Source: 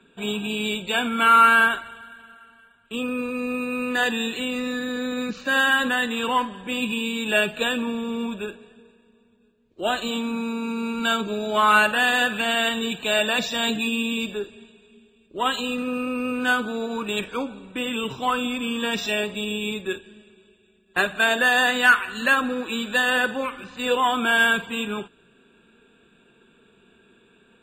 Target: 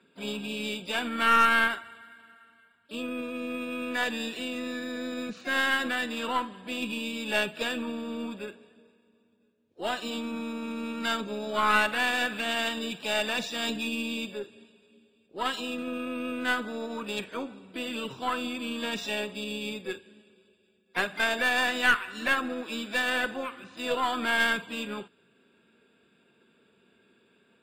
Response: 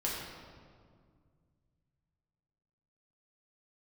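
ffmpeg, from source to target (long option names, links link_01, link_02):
-filter_complex "[0:a]asplit=2[link_01][link_02];[link_02]asetrate=58866,aresample=44100,atempo=0.749154,volume=-11dB[link_03];[link_01][link_03]amix=inputs=2:normalize=0,highpass=93,aeval=exprs='0.75*(cos(1*acos(clip(val(0)/0.75,-1,1)))-cos(1*PI/2))+0.0841*(cos(4*acos(clip(val(0)/0.75,-1,1)))-cos(4*PI/2))':channel_layout=same,volume=-7.5dB"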